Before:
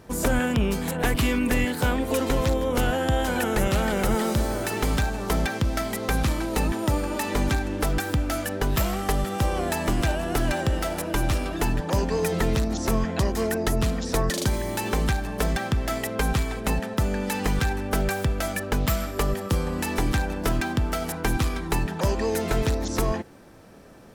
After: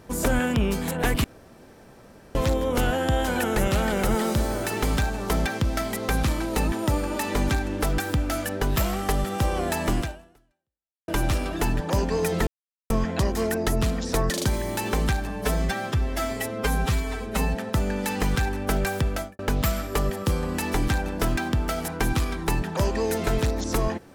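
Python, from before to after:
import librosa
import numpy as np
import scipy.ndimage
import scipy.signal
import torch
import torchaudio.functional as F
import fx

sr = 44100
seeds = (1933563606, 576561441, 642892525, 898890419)

y = fx.studio_fade_out(x, sr, start_s=18.36, length_s=0.27)
y = fx.edit(y, sr, fx.room_tone_fill(start_s=1.24, length_s=1.11),
    fx.fade_out_span(start_s=9.98, length_s=1.1, curve='exp'),
    fx.silence(start_s=12.47, length_s=0.43),
    fx.stretch_span(start_s=15.29, length_s=1.52, factor=1.5), tone=tone)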